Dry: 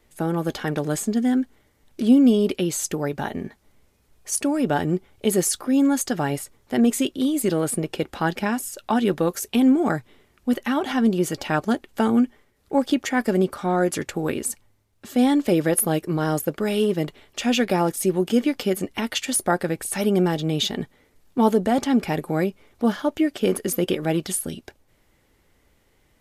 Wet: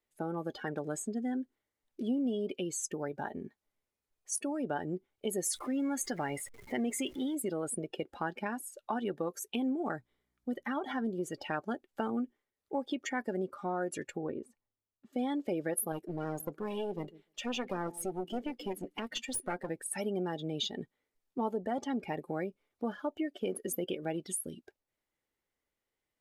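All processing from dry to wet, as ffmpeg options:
-filter_complex "[0:a]asettb=1/sr,asplit=3[a][b][c];[a]atrim=end=5.444[d];[b]atrim=start=5.44:end=7.35,asetpts=PTS-STARTPTS,afade=t=in:d=0.004:c=qsin,afade=t=out:st=1.906:d=0.004:c=qsin,aeval=exprs='val(0)+0.5*0.0316*sgn(val(0))':c=same,equalizer=f=2.1k:t=o:w=0.2:g=8.5[e];[c]atrim=start=7.346[f];[d][e]acrossfade=d=0.004:c1=hsin:c2=qsin[g];[g][f]acrossfade=d=0.004:c1=qsin:c2=hsin,asettb=1/sr,asplit=3[h][i][j];[h]atrim=end=9.924[k];[i]atrim=start=9.92:end=11.21,asetpts=PTS-STARTPTS,afade=t=in:d=0.004:c=qsin,afade=t=out:st=1.286:d=0.004:c=qsin,bandreject=f=2.7k:w=7.1,aeval=exprs='val(0)+0.00224*(sin(2*PI*60*n/s)+sin(2*PI*2*60*n/s)/2+sin(2*PI*3*60*n/s)/3+sin(2*PI*4*60*n/s)/4+sin(2*PI*5*60*n/s)/5)':c=same[l];[j]atrim=start=11.206[m];[k][l]acrossfade=d=0.004:c1=hsin:c2=qsin[n];[n][m]acrossfade=d=0.004:c1=qsin:c2=hsin,asettb=1/sr,asplit=3[o][p][q];[o]atrim=end=14.164[r];[p]atrim=start=14.16:end=15.13,asetpts=PTS-STARTPTS,afade=t=in:d=0.004:c=qsin,afade=t=out:st=0.966:d=0.004:c=qsin,lowpass=f=2.7k:p=1,highshelf=f=2k:g=-9,bandreject=f=1.6k:w=14[s];[q]atrim=start=15.126[t];[r][s]acrossfade=d=0.004:c1=hsin:c2=qsin[u];[u][t]acrossfade=d=0.004:c1=qsin:c2=hsin,asettb=1/sr,asplit=3[v][w][x];[v]atrim=end=15.924[y];[w]atrim=start=15.92:end=19.7,asetpts=PTS-STARTPTS,afade=t=in:d=0.004:c=qsin,afade=t=out:st=3.776:d=0.004:c=qsin,asplit=2[z][aa];[aa]adelay=148,lowpass=f=1.7k:p=1,volume=-19dB,asplit=2[ab][ac];[ac]adelay=148,lowpass=f=1.7k:p=1,volume=0.3,asplit=2[ad][ae];[ae]adelay=148,lowpass=f=1.7k:p=1,volume=0.3[af];[z][ab][ad][af]amix=inputs=4:normalize=0,atrim=end_sample=166698,aeval=exprs='clip(val(0),-1,0.0316)':c=same[ag];[x]atrim=start=19.696[ah];[y][ag]acrossfade=d=0.004:c1=hsin:c2=qsin[ai];[ai][ah]acrossfade=d=0.004:c1=qsin:c2=hsin,afftdn=nr=17:nf=-30,lowshelf=f=220:g=-11,acompressor=threshold=-28dB:ratio=2,volume=-6dB"

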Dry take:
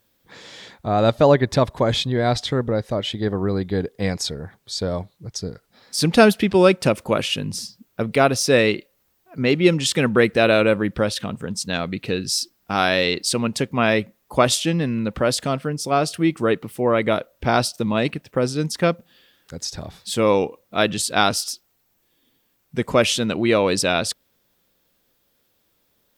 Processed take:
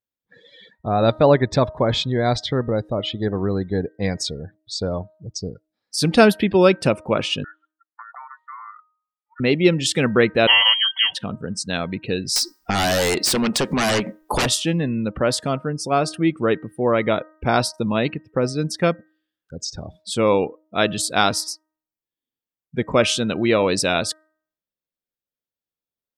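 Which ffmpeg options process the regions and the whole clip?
-filter_complex "[0:a]asettb=1/sr,asplit=3[a][b][c];[a]atrim=end=7.444[d];[b]atrim=start=7.44:end=9.4,asetpts=PTS-STARTPTS,afade=t=in:d=0.004:c=qsin,afade=t=out:st=1.956:d=0.004:c=qsin,acompressor=threshold=-26dB:ratio=12:attack=3.2:release=140:knee=1:detection=peak,aeval=exprs='val(0)*sin(2*PI*1600*n/s)':c=same,asuperpass=centerf=940:order=4:qfactor=1.3[e];[c]atrim=start=9.396[f];[d][e]acrossfade=d=0.004:c1=hsin:c2=qsin[g];[g][f]acrossfade=d=0.004:c1=qsin:c2=hsin,asettb=1/sr,asplit=3[h][i][j];[h]atrim=end=10.474[k];[i]atrim=start=10.47:end=11.15,asetpts=PTS-STARTPTS,afade=t=in:d=0.004:c=qsin,afade=t=out:st=0.676:d=0.004:c=qsin,aecho=1:1:4.9:0.71,atrim=end_sample=29988,lowpass=f=2.9k:t=q:w=0.5098,lowpass=f=2.9k:t=q:w=0.6013,lowpass=f=2.9k:t=q:w=0.9,lowpass=f=2.9k:t=q:w=2.563,afreqshift=-3400[l];[j]atrim=start=11.146[m];[k][l]acrossfade=d=0.004:c1=hsin:c2=qsin[n];[n][m]acrossfade=d=0.004:c1=qsin:c2=hsin,asettb=1/sr,asplit=3[o][p][q];[o]atrim=end=12.364[r];[p]atrim=start=12.36:end=14.46,asetpts=PTS-STARTPTS,afade=t=in:d=0.004:c=qsin,afade=t=out:st=2.096:d=0.004:c=qsin,equalizer=f=100:t=o:w=1.1:g=-14,aeval=exprs='0.75*sin(PI/2*7.08*val(0)/0.75)':c=same,acompressor=threshold=-18dB:ratio=8:attack=3.2:release=140:knee=1:detection=peak[s];[q]atrim=start=14.456[t];[r][s]acrossfade=d=0.004:c1=hsin:c2=qsin[u];[u][t]acrossfade=d=0.004:c1=qsin:c2=hsin,afftdn=nr=28:nf=-37,bandreject=f=312.3:t=h:w=4,bandreject=f=624.6:t=h:w=4,bandreject=f=936.9:t=h:w=4,bandreject=f=1.2492k:t=h:w=4,bandreject=f=1.5615k:t=h:w=4,bandreject=f=1.8738k:t=h:w=4"

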